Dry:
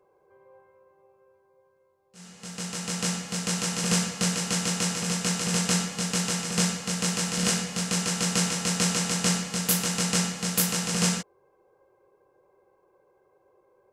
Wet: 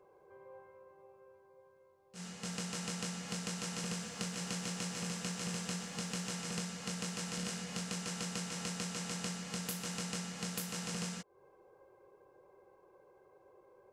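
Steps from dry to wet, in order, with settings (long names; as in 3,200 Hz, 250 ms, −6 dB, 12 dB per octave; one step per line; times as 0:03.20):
high-shelf EQ 7,000 Hz −4.5 dB
downward compressor 12 to 1, threshold −38 dBFS, peak gain reduction 18 dB
0:03.86–0:06.31: feedback echo at a low word length 132 ms, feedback 35%, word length 11 bits, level −11 dB
level +1 dB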